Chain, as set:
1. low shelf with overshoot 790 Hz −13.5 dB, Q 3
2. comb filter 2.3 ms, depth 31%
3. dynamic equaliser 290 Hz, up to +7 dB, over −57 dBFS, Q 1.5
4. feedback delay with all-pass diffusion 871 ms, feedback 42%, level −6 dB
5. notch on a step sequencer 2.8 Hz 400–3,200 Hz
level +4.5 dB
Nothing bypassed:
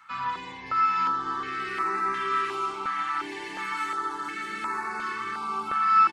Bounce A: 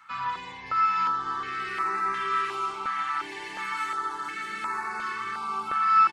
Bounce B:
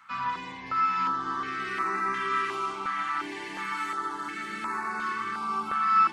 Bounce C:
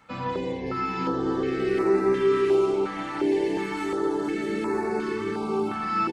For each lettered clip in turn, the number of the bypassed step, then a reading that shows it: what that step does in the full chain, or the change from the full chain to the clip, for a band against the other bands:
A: 3, 250 Hz band −5.0 dB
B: 2, change in integrated loudness −1.5 LU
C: 1, 500 Hz band +20.0 dB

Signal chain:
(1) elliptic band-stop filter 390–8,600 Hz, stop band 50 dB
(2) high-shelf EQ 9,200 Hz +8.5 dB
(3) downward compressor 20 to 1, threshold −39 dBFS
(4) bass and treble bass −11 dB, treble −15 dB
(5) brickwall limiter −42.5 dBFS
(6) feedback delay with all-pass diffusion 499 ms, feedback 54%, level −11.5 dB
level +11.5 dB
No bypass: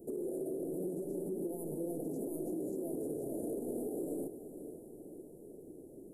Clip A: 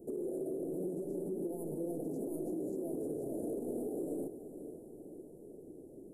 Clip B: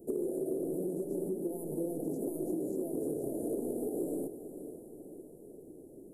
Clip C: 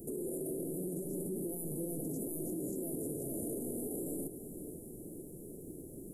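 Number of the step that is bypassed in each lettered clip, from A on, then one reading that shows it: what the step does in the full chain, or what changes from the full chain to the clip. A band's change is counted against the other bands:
2, 8 kHz band −4.5 dB
5, average gain reduction 2.0 dB
4, change in momentary loudness spread −4 LU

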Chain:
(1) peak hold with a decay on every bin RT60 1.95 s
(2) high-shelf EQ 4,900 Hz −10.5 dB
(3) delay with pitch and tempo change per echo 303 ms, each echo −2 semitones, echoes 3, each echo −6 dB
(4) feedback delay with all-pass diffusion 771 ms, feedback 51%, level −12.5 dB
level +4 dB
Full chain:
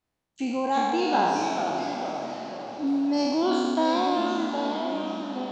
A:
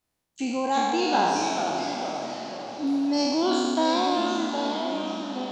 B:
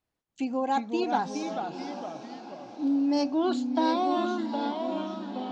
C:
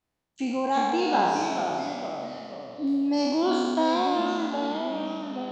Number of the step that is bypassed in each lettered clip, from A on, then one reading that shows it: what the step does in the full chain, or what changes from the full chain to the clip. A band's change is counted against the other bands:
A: 2, 4 kHz band +4.0 dB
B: 1, 250 Hz band +3.5 dB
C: 4, echo-to-direct ratio −11.0 dB to none audible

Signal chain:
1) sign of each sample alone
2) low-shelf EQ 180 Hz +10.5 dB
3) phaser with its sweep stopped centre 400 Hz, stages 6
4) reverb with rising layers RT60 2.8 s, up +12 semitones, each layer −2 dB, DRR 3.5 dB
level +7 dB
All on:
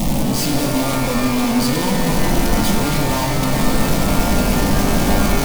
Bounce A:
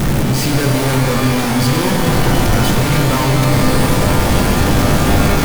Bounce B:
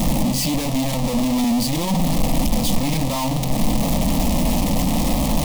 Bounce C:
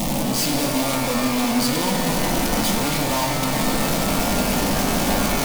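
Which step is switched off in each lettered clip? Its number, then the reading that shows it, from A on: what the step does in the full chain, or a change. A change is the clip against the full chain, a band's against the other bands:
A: 3, 125 Hz band +4.0 dB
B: 4, 2 kHz band −6.0 dB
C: 2, 125 Hz band −5.0 dB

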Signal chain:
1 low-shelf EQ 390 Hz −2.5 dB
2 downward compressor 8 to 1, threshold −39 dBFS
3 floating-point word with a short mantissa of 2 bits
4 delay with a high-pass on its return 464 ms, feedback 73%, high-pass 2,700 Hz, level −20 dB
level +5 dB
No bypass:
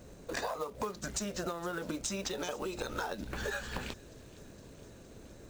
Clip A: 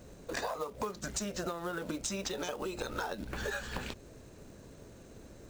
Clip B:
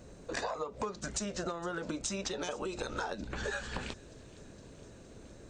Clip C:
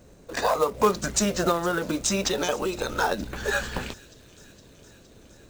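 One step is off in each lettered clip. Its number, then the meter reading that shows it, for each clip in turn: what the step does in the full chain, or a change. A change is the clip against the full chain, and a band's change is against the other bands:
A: 4, echo-to-direct ratio −24.5 dB to none audible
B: 3, distortion level −20 dB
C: 2, change in momentary loudness spread −6 LU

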